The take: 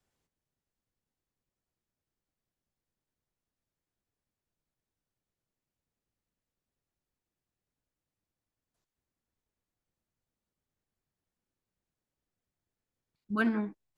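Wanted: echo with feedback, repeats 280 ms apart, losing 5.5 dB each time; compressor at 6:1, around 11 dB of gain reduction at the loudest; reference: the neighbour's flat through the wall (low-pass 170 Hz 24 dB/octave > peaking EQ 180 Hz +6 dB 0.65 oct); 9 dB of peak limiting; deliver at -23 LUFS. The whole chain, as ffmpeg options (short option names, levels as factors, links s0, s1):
-af "acompressor=threshold=0.0158:ratio=6,alimiter=level_in=3.76:limit=0.0631:level=0:latency=1,volume=0.266,lowpass=f=170:w=0.5412,lowpass=f=170:w=1.3066,equalizer=f=180:t=o:w=0.65:g=6,aecho=1:1:280|560|840|1120|1400|1680|1960:0.531|0.281|0.149|0.079|0.0419|0.0222|0.0118,volume=20"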